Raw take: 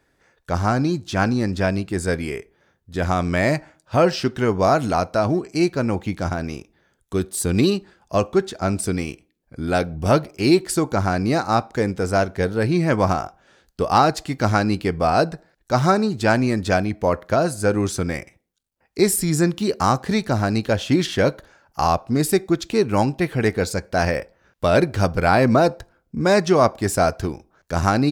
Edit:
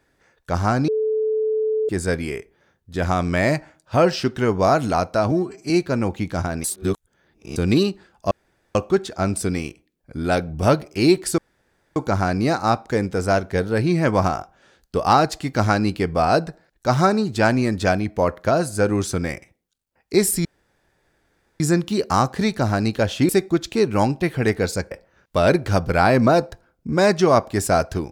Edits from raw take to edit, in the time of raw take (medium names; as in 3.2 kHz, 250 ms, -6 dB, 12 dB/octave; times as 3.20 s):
0.88–1.89 s: bleep 435 Hz -18 dBFS
5.31–5.57 s: stretch 1.5×
6.51–7.43 s: reverse
8.18 s: insert room tone 0.44 s
10.81 s: insert room tone 0.58 s
19.30 s: insert room tone 1.15 s
20.99–22.27 s: delete
23.89–24.19 s: delete